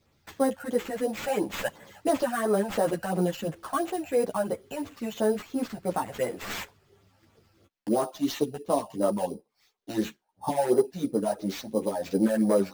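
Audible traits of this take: phasing stages 12, 2.9 Hz, lowest notch 340–4500 Hz; aliases and images of a low sample rate 9.9 kHz, jitter 0%; a shimmering, thickened sound

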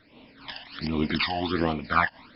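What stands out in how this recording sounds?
phasing stages 12, 1.3 Hz, lowest notch 390–1600 Hz; random flutter of the level

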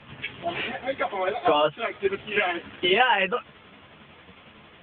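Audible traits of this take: tremolo saw down 11 Hz, depth 45%; a shimmering, thickened sound

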